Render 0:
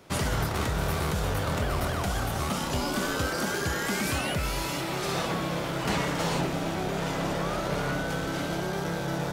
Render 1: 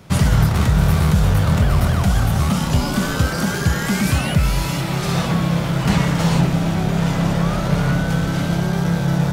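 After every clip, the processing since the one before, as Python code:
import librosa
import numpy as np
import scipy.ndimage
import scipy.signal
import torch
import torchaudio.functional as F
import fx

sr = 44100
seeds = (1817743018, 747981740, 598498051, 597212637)

y = fx.low_shelf_res(x, sr, hz=240.0, db=8.0, q=1.5)
y = y * 10.0 ** (6.0 / 20.0)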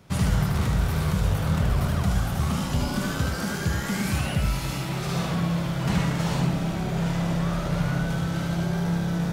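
y = x + 10.0 ** (-3.5 / 20.0) * np.pad(x, (int(76 * sr / 1000.0), 0))[:len(x)]
y = y * 10.0 ** (-9.0 / 20.0)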